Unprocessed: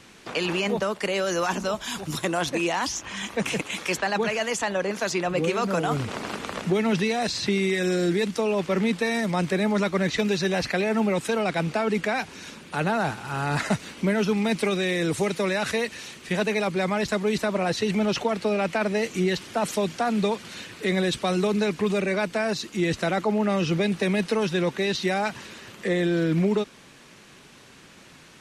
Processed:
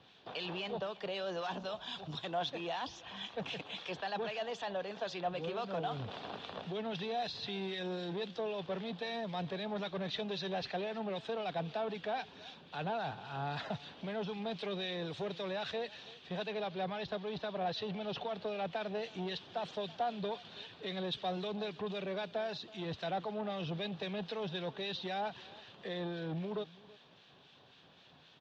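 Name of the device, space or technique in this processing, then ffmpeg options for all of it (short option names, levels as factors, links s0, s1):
guitar amplifier with harmonic tremolo: -filter_complex "[0:a]acrossover=split=1400[s0][s1];[s0]aeval=exprs='val(0)*(1-0.5/2+0.5/2*cos(2*PI*3.8*n/s))':c=same[s2];[s1]aeval=exprs='val(0)*(1-0.5/2-0.5/2*cos(2*PI*3.8*n/s))':c=same[s3];[s2][s3]amix=inputs=2:normalize=0,asoftclip=type=tanh:threshold=0.075,highpass=85,equalizer=f=220:t=q:w=4:g=-6,equalizer=f=330:t=q:w=4:g=-6,equalizer=f=730:t=q:w=4:g=6,equalizer=f=1300:t=q:w=4:g=-4,equalizer=f=2100:t=q:w=4:g=-9,equalizer=f=3500:t=q:w=4:g=8,lowpass=f=4300:w=0.5412,lowpass=f=4300:w=1.3066,asettb=1/sr,asplit=3[s4][s5][s6];[s4]atrim=end=16.474[s7];[s5]atrim=start=16.47:end=18.34,asetpts=PTS-STARTPTS,afade=t=in:d=0.004:c=qsin,afade=t=out:st=1.866:d=0.004:c=qsin,lowpass=f=6100:w=0.5412,lowpass=f=6100:w=1.3066[s8];[s6]atrim=start=18.336[s9];[s7][s8]acrossfade=d=0.004:c1=hsin:c2=qsin[s10];[s10][s9]acrossfade=d=0.004:c1=qsin:c2=hsin,aecho=1:1:327:0.0891,volume=0.376"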